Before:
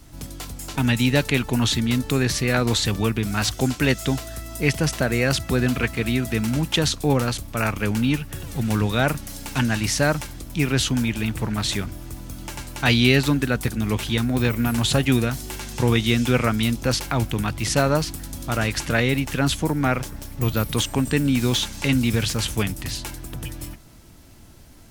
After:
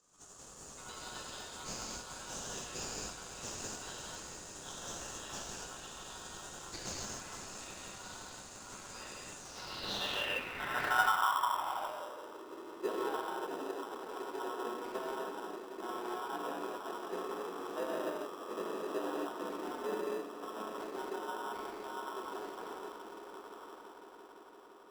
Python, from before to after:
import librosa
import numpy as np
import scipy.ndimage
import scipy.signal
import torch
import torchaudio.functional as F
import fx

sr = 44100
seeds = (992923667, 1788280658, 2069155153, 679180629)

p1 = fx.freq_compress(x, sr, knee_hz=3600.0, ratio=1.5)
p2 = fx.rev_gated(p1, sr, seeds[0], gate_ms=310, shape='flat', drr_db=-5.5)
p3 = p2 * np.sin(2.0 * np.pi * 1200.0 * np.arange(len(p2)) / sr)
p4 = scipy.signal.sosfilt(scipy.signal.butter(16, 170.0, 'highpass', fs=sr, output='sos'), p3)
p5 = p4 + fx.echo_swell(p4, sr, ms=170, loudest=5, wet_db=-15.5, dry=0)
p6 = fx.filter_sweep_bandpass(p5, sr, from_hz=6900.0, to_hz=400.0, start_s=9.37, end_s=12.43, q=4.5)
p7 = fx.sample_hold(p6, sr, seeds[1], rate_hz=2200.0, jitter_pct=0)
p8 = p6 + (p7 * librosa.db_to_amplitude(-5.0))
p9 = fx.dynamic_eq(p8, sr, hz=6100.0, q=1.3, threshold_db=-47.0, ratio=4.0, max_db=-4)
y = p9 * librosa.db_to_amplitude(-7.0)